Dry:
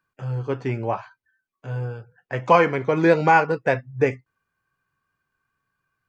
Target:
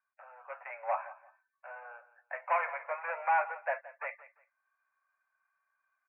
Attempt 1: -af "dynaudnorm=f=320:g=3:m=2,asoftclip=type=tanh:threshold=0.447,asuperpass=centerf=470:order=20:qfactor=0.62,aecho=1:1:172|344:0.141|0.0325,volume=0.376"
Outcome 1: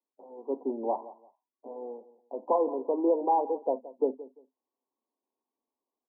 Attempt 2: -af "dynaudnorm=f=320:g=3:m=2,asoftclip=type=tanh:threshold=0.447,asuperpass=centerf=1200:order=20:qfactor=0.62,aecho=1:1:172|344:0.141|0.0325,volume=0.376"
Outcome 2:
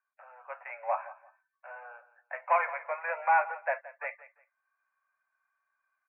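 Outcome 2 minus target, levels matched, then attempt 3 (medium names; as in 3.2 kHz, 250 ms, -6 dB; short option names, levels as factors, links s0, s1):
saturation: distortion -7 dB
-af "dynaudnorm=f=320:g=3:m=2,asoftclip=type=tanh:threshold=0.2,asuperpass=centerf=1200:order=20:qfactor=0.62,aecho=1:1:172|344:0.141|0.0325,volume=0.376"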